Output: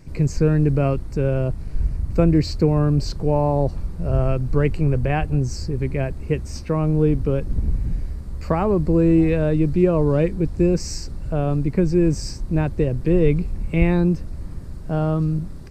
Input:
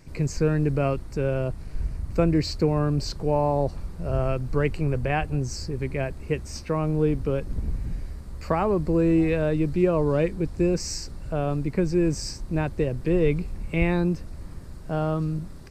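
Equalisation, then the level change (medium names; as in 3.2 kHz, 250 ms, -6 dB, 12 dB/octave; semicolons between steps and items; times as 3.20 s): bass shelf 420 Hz +7 dB; 0.0 dB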